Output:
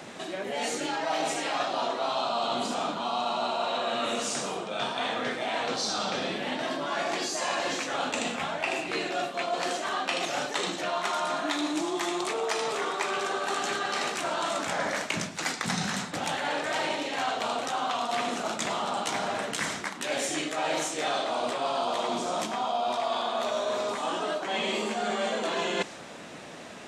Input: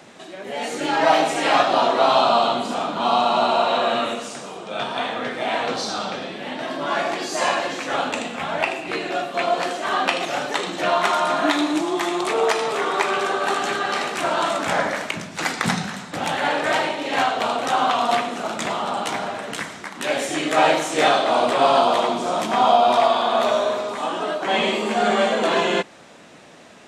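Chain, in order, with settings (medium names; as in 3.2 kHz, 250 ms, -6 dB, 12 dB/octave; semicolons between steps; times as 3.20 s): dynamic bell 6.4 kHz, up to +6 dB, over -43 dBFS, Q 0.78; reverse; compression 6:1, threshold -30 dBFS, peak gain reduction 18 dB; reverse; trim +2.5 dB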